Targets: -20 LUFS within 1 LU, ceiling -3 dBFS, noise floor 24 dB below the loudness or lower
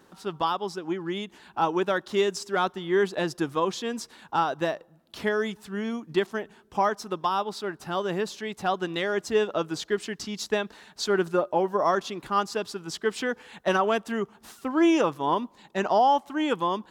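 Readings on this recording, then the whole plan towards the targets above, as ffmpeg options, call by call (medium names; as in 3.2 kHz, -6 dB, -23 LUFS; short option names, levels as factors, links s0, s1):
loudness -27.5 LUFS; peak level -12.5 dBFS; loudness target -20.0 LUFS
-> -af "volume=2.37"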